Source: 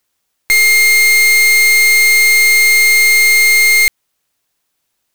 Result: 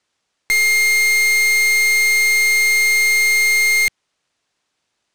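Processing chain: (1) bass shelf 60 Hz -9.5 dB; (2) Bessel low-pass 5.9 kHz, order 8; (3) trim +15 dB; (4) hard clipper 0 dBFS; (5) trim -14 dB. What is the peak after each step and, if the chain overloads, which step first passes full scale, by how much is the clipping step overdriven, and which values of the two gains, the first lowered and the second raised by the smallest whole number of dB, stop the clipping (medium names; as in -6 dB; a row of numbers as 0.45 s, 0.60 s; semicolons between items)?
-7.5 dBFS, -6.5 dBFS, +8.5 dBFS, 0.0 dBFS, -14.0 dBFS; step 3, 8.5 dB; step 3 +6 dB, step 5 -5 dB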